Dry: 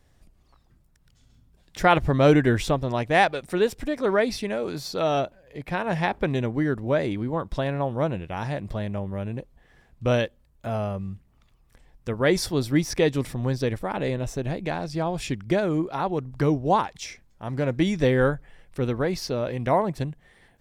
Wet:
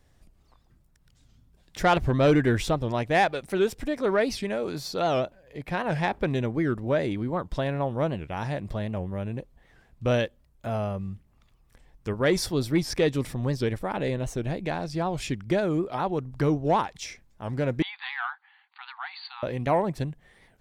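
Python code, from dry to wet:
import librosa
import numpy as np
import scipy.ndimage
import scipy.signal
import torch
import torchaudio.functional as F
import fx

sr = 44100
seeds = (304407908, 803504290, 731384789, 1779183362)

y = 10.0 ** (-11.0 / 20.0) * np.tanh(x / 10.0 ** (-11.0 / 20.0))
y = fx.brickwall_bandpass(y, sr, low_hz=750.0, high_hz=4700.0, at=(17.82, 19.43))
y = fx.record_warp(y, sr, rpm=78.0, depth_cents=160.0)
y = F.gain(torch.from_numpy(y), -1.0).numpy()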